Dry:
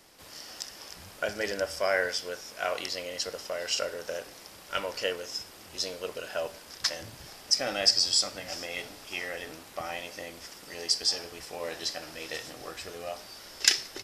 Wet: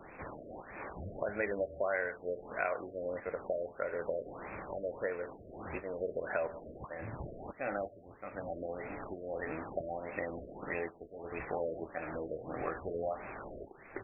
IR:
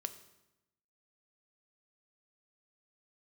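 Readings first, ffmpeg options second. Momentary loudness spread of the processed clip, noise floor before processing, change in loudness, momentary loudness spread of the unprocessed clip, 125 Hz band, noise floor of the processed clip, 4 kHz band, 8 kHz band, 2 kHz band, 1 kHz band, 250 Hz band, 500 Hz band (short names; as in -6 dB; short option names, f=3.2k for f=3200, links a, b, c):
11 LU, -50 dBFS, -9.0 dB, 17 LU, +3.0 dB, -55 dBFS, under -40 dB, under -40 dB, -6.5 dB, -2.5 dB, +1.5 dB, -1.5 dB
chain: -filter_complex "[0:a]acompressor=threshold=-42dB:ratio=4,asplit=2[a][b];[1:a]atrim=start_sample=2205,afade=t=out:st=0.28:d=0.01,atrim=end_sample=12789[c];[b][c]afir=irnorm=-1:irlink=0,volume=-8dB[d];[a][d]amix=inputs=2:normalize=0,afftfilt=real='re*lt(b*sr/1024,670*pow(2700/670,0.5+0.5*sin(2*PI*1.6*pts/sr)))':imag='im*lt(b*sr/1024,670*pow(2700/670,0.5+0.5*sin(2*PI*1.6*pts/sr)))':win_size=1024:overlap=0.75,volume=7dB"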